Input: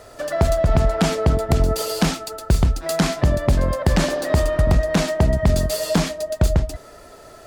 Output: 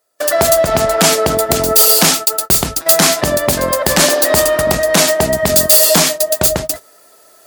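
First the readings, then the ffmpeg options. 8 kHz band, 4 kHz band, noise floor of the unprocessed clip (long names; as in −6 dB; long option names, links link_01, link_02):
+19.0 dB, +14.0 dB, −44 dBFS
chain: -af "aemphasis=mode=production:type=bsi,bandreject=frequency=50:width_type=h:width=6,bandreject=frequency=100:width_type=h:width=6,bandreject=frequency=150:width_type=h:width=6,agate=range=-36dB:threshold=-29dB:ratio=16:detection=peak,lowshelf=frequency=96:gain=-11,areverse,acompressor=mode=upward:threshold=-38dB:ratio=2.5,areverse,apsyclip=11.5dB,volume=-1.5dB"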